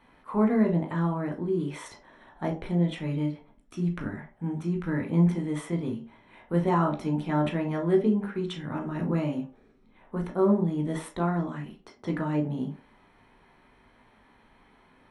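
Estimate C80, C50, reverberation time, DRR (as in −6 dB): 17.5 dB, 10.5 dB, 0.40 s, 0.5 dB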